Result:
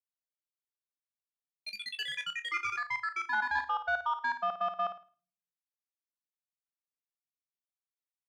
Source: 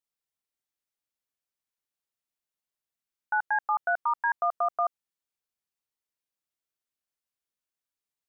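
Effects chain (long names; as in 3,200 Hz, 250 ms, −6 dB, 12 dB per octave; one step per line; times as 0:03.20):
high-pass filter 720 Hz 6 dB per octave
noise gate −30 dBFS, range −24 dB
brickwall limiter −28 dBFS, peak gain reduction 8 dB
soft clipping −30.5 dBFS, distortion −19 dB
flutter between parallel walls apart 9.3 metres, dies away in 0.35 s
on a send at −19 dB: convolution reverb RT60 0.45 s, pre-delay 4 ms
on the sum: delay with pitch and tempo change per echo 163 ms, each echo +6 semitones, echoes 3
level +6.5 dB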